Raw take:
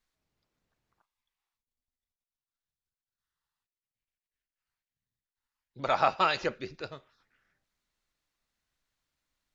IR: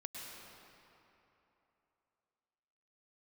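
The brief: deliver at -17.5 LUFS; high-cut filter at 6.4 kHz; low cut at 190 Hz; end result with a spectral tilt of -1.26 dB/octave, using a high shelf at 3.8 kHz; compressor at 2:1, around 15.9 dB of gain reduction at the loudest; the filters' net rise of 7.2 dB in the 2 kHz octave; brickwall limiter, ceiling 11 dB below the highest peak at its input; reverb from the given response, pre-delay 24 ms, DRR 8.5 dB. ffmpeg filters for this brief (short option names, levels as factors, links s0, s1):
-filter_complex "[0:a]highpass=190,lowpass=6400,equalizer=f=2000:t=o:g=8,highshelf=f=3800:g=7,acompressor=threshold=0.00447:ratio=2,alimiter=level_in=2.99:limit=0.0631:level=0:latency=1,volume=0.335,asplit=2[s0][s1];[1:a]atrim=start_sample=2205,adelay=24[s2];[s1][s2]afir=irnorm=-1:irlink=0,volume=0.447[s3];[s0][s3]amix=inputs=2:normalize=0,volume=31.6"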